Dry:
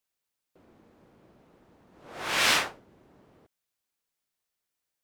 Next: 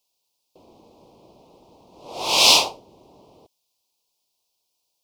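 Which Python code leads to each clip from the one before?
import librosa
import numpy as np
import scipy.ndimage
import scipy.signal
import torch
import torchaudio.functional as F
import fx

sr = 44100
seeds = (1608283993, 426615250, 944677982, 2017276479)

y = fx.curve_eq(x, sr, hz=(220.0, 430.0, 990.0, 1700.0, 2500.0, 4900.0, 7700.0), db=(0, 5, 8, -29, 4, 12, 5))
y = y * 10.0 ** (3.5 / 20.0)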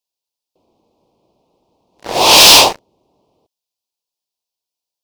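y = fx.leveller(x, sr, passes=5)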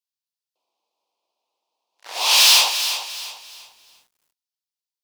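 y = scipy.signal.sosfilt(scipy.signal.butter(2, 1200.0, 'highpass', fs=sr, output='sos'), x)
y = fx.echo_crushed(y, sr, ms=347, feedback_pct=35, bits=7, wet_db=-10)
y = y * 10.0 ** (-7.5 / 20.0)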